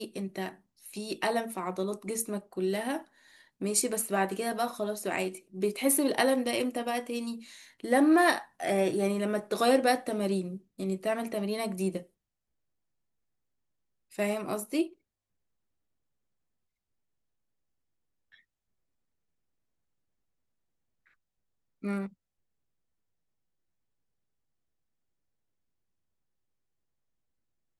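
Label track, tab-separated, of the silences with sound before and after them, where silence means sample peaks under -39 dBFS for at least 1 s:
12.020000	14.150000	silence
14.870000	21.840000	silence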